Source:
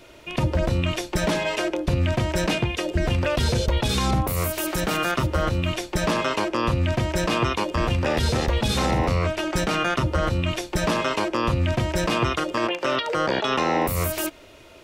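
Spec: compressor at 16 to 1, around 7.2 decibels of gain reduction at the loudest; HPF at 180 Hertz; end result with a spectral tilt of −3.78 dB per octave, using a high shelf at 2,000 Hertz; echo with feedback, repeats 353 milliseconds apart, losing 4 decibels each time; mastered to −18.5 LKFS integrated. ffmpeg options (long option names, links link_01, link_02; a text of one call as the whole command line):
ffmpeg -i in.wav -af "highpass=180,highshelf=frequency=2000:gain=4.5,acompressor=threshold=-25dB:ratio=16,aecho=1:1:353|706|1059|1412|1765|2118|2471|2824|3177:0.631|0.398|0.25|0.158|0.0994|0.0626|0.0394|0.0249|0.0157,volume=8.5dB" out.wav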